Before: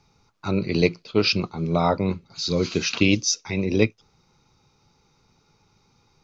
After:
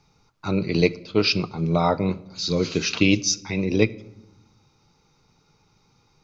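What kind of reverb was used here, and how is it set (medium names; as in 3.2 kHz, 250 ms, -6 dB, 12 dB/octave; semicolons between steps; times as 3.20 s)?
simulated room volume 3500 m³, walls furnished, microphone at 0.5 m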